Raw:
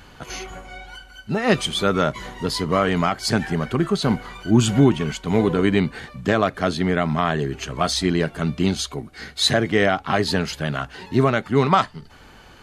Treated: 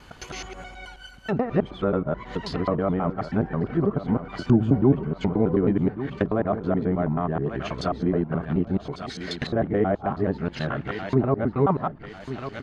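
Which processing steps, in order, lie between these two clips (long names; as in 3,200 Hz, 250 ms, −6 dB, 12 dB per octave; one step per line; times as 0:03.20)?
reversed piece by piece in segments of 107 ms
repeating echo 1,146 ms, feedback 35%, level −12.5 dB
treble cut that deepens with the level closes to 830 Hz, closed at −17.5 dBFS
level −2.5 dB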